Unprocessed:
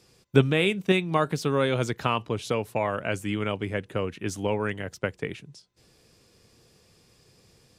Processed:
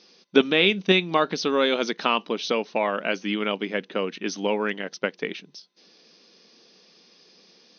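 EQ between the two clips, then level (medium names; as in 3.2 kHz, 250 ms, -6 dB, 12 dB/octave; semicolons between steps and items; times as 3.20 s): brick-wall FIR band-pass 170–6400 Hz; peaking EQ 4 kHz +7.5 dB 1.1 oct; +2.5 dB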